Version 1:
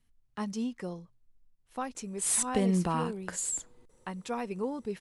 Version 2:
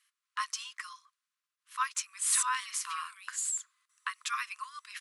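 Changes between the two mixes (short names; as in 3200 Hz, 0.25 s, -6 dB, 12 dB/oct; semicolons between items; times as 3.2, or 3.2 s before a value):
speech +9.5 dB; master: add brick-wall FIR high-pass 1000 Hz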